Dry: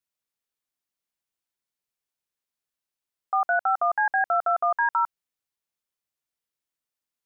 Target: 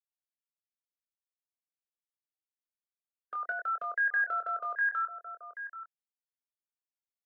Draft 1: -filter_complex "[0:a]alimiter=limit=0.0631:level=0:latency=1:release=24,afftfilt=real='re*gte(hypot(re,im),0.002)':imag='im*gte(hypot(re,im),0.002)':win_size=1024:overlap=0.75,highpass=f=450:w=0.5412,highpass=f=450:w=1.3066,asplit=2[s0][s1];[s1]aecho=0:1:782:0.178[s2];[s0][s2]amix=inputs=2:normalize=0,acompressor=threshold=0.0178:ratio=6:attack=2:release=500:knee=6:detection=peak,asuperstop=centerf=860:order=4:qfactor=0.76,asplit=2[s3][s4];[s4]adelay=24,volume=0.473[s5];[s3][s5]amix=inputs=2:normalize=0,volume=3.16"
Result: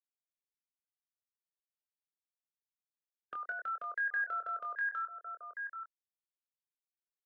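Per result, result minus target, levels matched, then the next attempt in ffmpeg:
compression: peak gain reduction +4.5 dB; 500 Hz band -2.5 dB
-filter_complex "[0:a]alimiter=limit=0.0631:level=0:latency=1:release=24,afftfilt=real='re*gte(hypot(re,im),0.002)':imag='im*gte(hypot(re,im),0.002)':win_size=1024:overlap=0.75,highpass=f=450:w=0.5412,highpass=f=450:w=1.3066,asplit=2[s0][s1];[s1]aecho=0:1:782:0.178[s2];[s0][s2]amix=inputs=2:normalize=0,acompressor=threshold=0.0447:ratio=6:attack=2:release=500:knee=6:detection=peak,asuperstop=centerf=860:order=4:qfactor=0.76,asplit=2[s3][s4];[s4]adelay=24,volume=0.473[s5];[s3][s5]amix=inputs=2:normalize=0,volume=3.16"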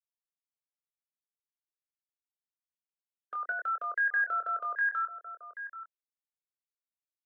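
500 Hz band -3.5 dB
-filter_complex "[0:a]alimiter=limit=0.0631:level=0:latency=1:release=24,afftfilt=real='re*gte(hypot(re,im),0.002)':imag='im*gte(hypot(re,im),0.002)':win_size=1024:overlap=0.75,highpass=f=450:w=0.5412,highpass=f=450:w=1.3066,adynamicequalizer=threshold=0.00562:dfrequency=690:dqfactor=7.1:tfrequency=690:tqfactor=7.1:attack=5:release=100:ratio=0.438:range=2.5:mode=boostabove:tftype=bell,asplit=2[s0][s1];[s1]aecho=0:1:782:0.178[s2];[s0][s2]amix=inputs=2:normalize=0,acompressor=threshold=0.0447:ratio=6:attack=2:release=500:knee=6:detection=peak,asuperstop=centerf=860:order=4:qfactor=0.76,asplit=2[s3][s4];[s4]adelay=24,volume=0.473[s5];[s3][s5]amix=inputs=2:normalize=0,volume=3.16"

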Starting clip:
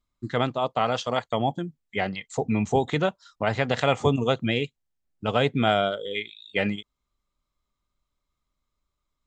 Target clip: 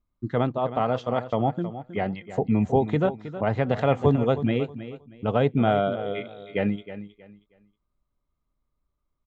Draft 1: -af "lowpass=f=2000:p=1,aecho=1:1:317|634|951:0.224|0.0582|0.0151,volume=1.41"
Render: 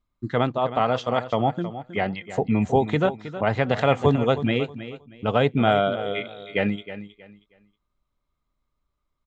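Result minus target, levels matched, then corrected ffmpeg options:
2 kHz band +4.5 dB
-af "lowpass=f=700:p=1,aecho=1:1:317|634|951:0.224|0.0582|0.0151,volume=1.41"

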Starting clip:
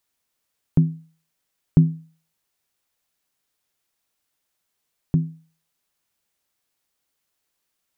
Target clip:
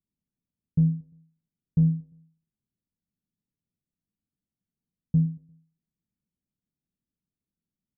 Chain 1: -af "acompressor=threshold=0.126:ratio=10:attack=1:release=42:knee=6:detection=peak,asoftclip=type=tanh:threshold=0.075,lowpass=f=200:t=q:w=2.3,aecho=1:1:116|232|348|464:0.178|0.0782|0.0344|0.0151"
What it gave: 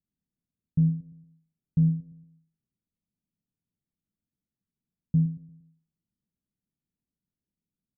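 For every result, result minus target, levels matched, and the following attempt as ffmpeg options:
compression: peak gain reduction +12 dB; echo-to-direct +6.5 dB
-af "asoftclip=type=tanh:threshold=0.075,lowpass=f=200:t=q:w=2.3,aecho=1:1:116|232|348|464:0.178|0.0782|0.0344|0.0151"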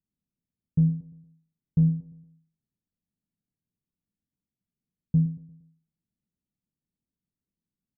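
echo-to-direct +6.5 dB
-af "asoftclip=type=tanh:threshold=0.075,lowpass=f=200:t=q:w=2.3,aecho=1:1:116|232|348:0.0841|0.037|0.0163"

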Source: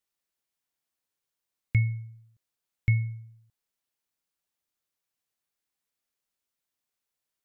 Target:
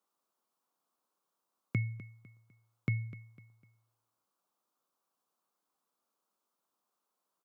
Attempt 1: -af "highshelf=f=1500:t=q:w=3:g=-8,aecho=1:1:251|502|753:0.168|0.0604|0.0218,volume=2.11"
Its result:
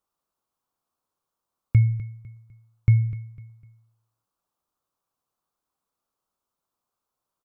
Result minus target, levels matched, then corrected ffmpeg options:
250 Hz band -7.5 dB
-af "highpass=f=180:w=0.5412,highpass=f=180:w=1.3066,highshelf=f=1500:t=q:w=3:g=-8,aecho=1:1:251|502|753:0.168|0.0604|0.0218,volume=2.11"

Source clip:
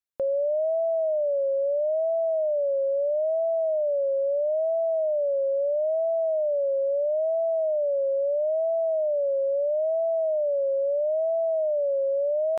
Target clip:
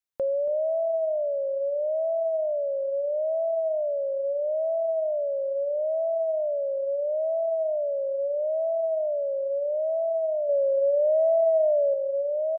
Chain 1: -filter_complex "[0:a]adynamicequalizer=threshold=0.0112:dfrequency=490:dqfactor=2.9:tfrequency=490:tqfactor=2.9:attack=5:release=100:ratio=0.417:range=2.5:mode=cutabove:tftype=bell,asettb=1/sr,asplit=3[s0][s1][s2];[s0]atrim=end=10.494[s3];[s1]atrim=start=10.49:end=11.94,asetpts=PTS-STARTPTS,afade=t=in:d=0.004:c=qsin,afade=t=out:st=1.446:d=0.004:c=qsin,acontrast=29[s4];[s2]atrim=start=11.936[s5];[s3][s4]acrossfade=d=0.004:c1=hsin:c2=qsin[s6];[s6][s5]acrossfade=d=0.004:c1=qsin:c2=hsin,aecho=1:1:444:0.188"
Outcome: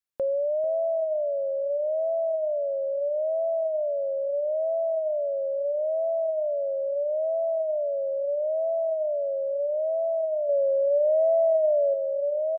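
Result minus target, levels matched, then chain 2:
echo 166 ms late
-filter_complex "[0:a]adynamicequalizer=threshold=0.0112:dfrequency=490:dqfactor=2.9:tfrequency=490:tqfactor=2.9:attack=5:release=100:ratio=0.417:range=2.5:mode=cutabove:tftype=bell,asettb=1/sr,asplit=3[s0][s1][s2];[s0]atrim=end=10.494[s3];[s1]atrim=start=10.49:end=11.94,asetpts=PTS-STARTPTS,afade=t=in:d=0.004:c=qsin,afade=t=out:st=1.446:d=0.004:c=qsin,acontrast=29[s4];[s2]atrim=start=11.936[s5];[s3][s4]acrossfade=d=0.004:c1=hsin:c2=qsin[s6];[s6][s5]acrossfade=d=0.004:c1=qsin:c2=hsin,aecho=1:1:278:0.188"

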